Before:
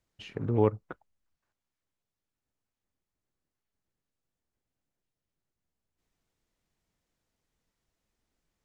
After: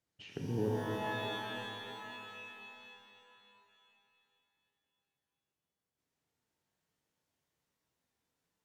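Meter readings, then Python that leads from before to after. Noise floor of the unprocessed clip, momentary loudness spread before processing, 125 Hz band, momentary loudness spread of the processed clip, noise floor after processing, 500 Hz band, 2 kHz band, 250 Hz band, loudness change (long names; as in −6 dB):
below −85 dBFS, 17 LU, −7.0 dB, 16 LU, below −85 dBFS, −6.5 dB, +10.5 dB, −5.0 dB, −11.0 dB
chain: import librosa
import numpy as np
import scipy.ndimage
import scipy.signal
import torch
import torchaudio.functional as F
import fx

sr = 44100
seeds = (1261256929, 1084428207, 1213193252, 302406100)

y = scipy.signal.sosfilt(scipy.signal.butter(2, 95.0, 'highpass', fs=sr, output='sos'), x)
y = fx.env_lowpass_down(y, sr, base_hz=360.0, full_db=-32.5)
y = fx.rev_shimmer(y, sr, seeds[0], rt60_s=3.1, semitones=12, shimmer_db=-2, drr_db=0.5)
y = F.gain(torch.from_numpy(y), -6.0).numpy()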